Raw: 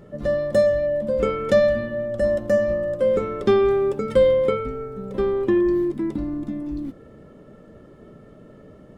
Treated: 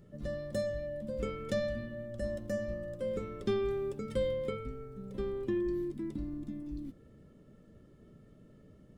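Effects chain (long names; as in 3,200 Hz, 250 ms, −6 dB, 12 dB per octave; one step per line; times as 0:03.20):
parametric band 840 Hz −11.5 dB 3 octaves
level −7 dB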